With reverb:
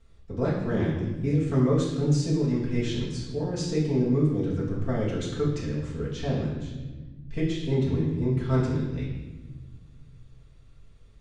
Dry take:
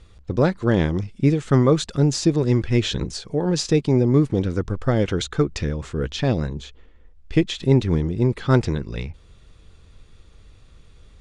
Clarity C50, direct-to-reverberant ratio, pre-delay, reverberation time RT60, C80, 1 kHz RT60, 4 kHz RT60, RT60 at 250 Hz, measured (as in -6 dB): 3.0 dB, -8.5 dB, 4 ms, 1.2 s, 5.0 dB, 0.95 s, 0.95 s, 2.3 s